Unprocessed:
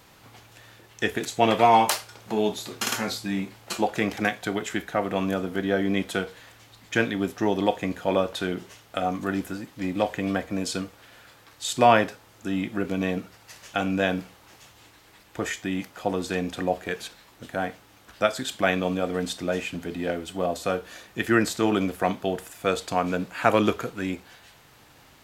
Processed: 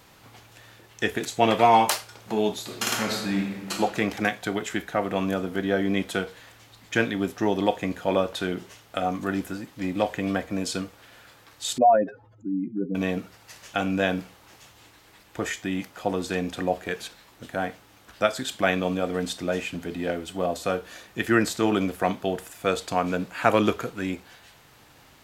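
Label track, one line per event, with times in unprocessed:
2.620000	3.790000	thrown reverb, RT60 1.4 s, DRR 2.5 dB
11.780000	12.950000	expanding power law on the bin magnitudes exponent 3

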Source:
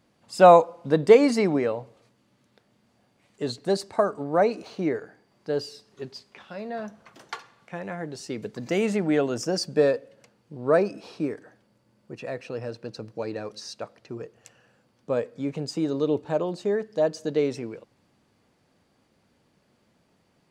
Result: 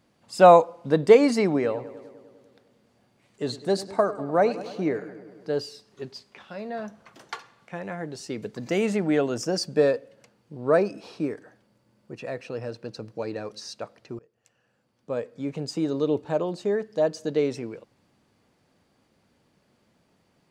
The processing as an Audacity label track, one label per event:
1.540000	5.500000	feedback echo with a low-pass in the loop 100 ms, feedback 71%, low-pass 3,400 Hz, level −15 dB
14.190000	15.710000	fade in, from −23.5 dB

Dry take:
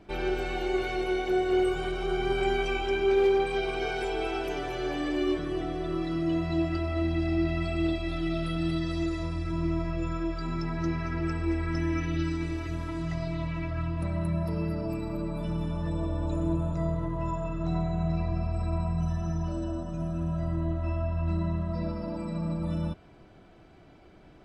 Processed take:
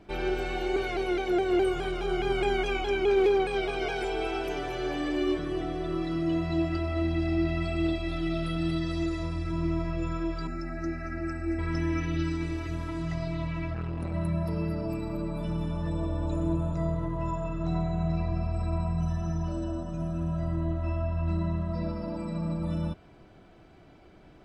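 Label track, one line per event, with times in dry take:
0.760000	4.040000	pitch modulation by a square or saw wave saw down 4.8 Hz, depth 100 cents
10.470000	11.590000	phaser with its sweep stopped centre 670 Hz, stages 8
13.740000	14.140000	saturating transformer saturates under 270 Hz

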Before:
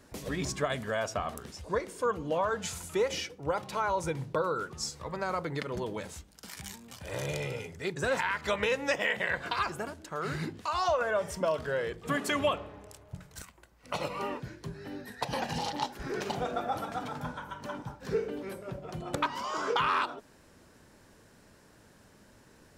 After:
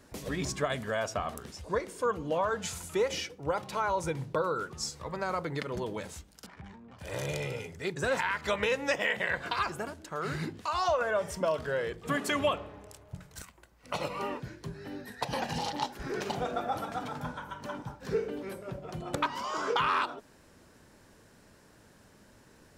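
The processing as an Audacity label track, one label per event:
6.460000	6.990000	low-pass filter 1,400 Hz

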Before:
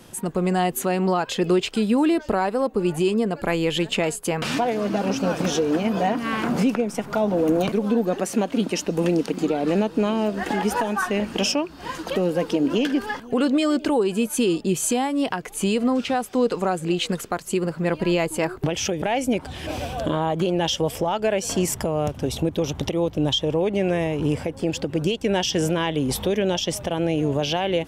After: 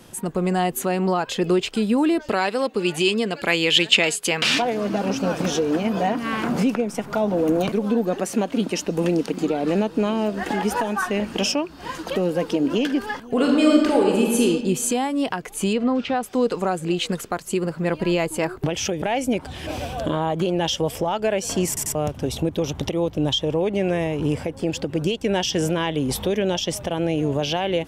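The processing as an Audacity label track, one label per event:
2.290000	4.620000	meter weighting curve D
13.290000	14.430000	thrown reverb, RT60 1.3 s, DRR −1 dB
15.730000	16.230000	low-pass filter 4,000 Hz
21.680000	21.680000	stutter in place 0.09 s, 3 plays

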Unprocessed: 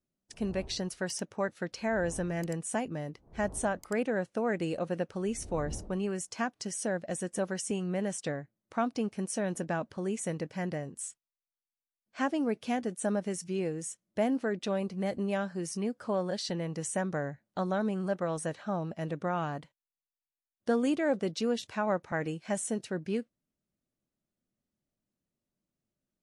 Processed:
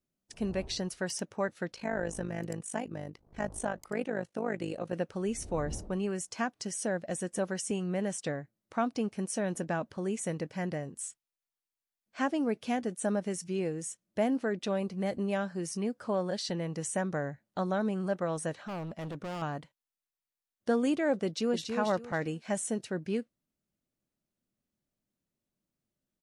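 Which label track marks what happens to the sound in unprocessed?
1.720000	4.930000	amplitude modulation modulator 51 Hz, depth 65%
18.670000	19.420000	gain into a clipping stage and back gain 35.5 dB
21.250000	21.700000	delay throw 280 ms, feedback 25%, level −5 dB

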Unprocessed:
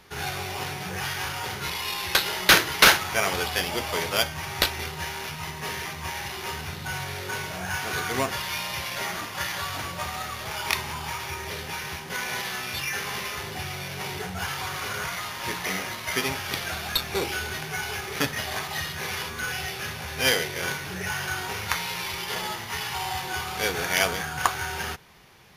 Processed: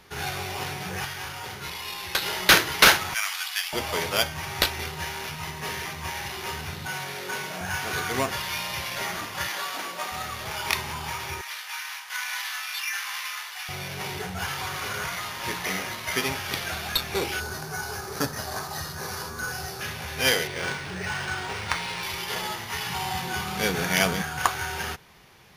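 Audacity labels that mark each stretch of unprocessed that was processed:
1.050000	2.220000	clip gain −4.5 dB
3.140000	3.730000	Bessel high-pass filter 1,600 Hz, order 6
6.870000	7.610000	high-pass filter 150 Hz 24 dB per octave
9.480000	10.120000	high-pass filter 230 Hz 24 dB per octave
11.410000	13.690000	high-pass filter 980 Hz 24 dB per octave
17.400000	19.810000	flat-topped bell 2,600 Hz −12 dB 1.1 octaves
20.470000	22.030000	linearly interpolated sample-rate reduction rate divided by 3×
22.860000	24.220000	parametric band 190 Hz +11.5 dB

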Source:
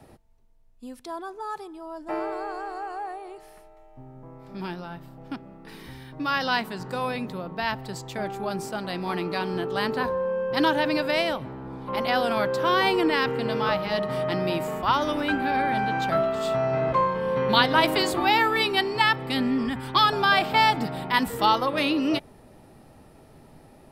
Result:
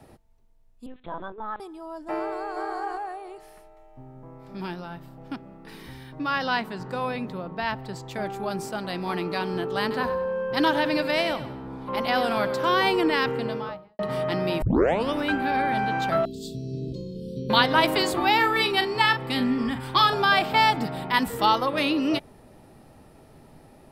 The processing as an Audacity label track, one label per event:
0.860000	1.600000	linear-prediction vocoder at 8 kHz pitch kept
2.330000	2.740000	delay throw 230 ms, feedback 15%, level −1 dB
6.190000	8.110000	high-shelf EQ 4,900 Hz −8.5 dB
9.810000	12.680000	repeating echo 96 ms, feedback 36%, level −12.5 dB
13.270000	13.990000	fade out and dull
14.620000	14.620000	tape start 0.50 s
16.250000	17.500000	elliptic band-stop filter 380–4,100 Hz, stop band 50 dB
18.360000	20.240000	double-tracking delay 40 ms −9.5 dB

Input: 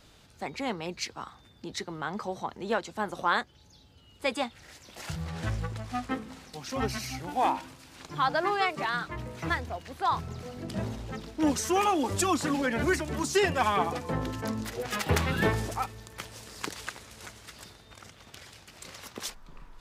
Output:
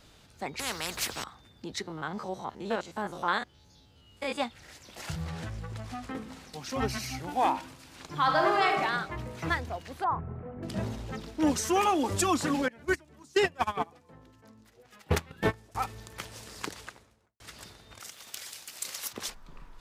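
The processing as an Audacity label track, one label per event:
0.590000	1.240000	every bin compressed towards the loudest bin 4 to 1
1.820000	4.400000	spectrum averaged block by block every 50 ms
5.340000	6.150000	downward compressor, threshold −34 dBFS
8.200000	8.810000	thrown reverb, RT60 0.95 s, DRR 1.5 dB
10.040000	10.630000	Bessel low-pass filter 1,200 Hz, order 6
12.680000	15.750000	noise gate −25 dBFS, range −23 dB
16.510000	17.400000	fade out and dull
18.000000	19.130000	RIAA equalisation recording

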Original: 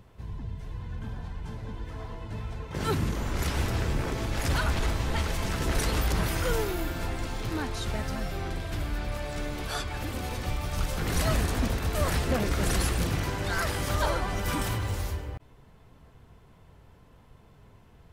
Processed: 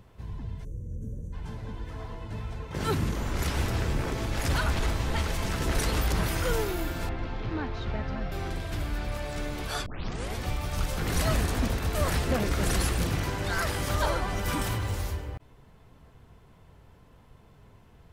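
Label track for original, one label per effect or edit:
0.640000	1.330000	gain on a spectral selection 620–5,700 Hz −28 dB
7.090000	8.320000	high-frequency loss of the air 250 metres
9.860000	9.860000	tape start 0.53 s

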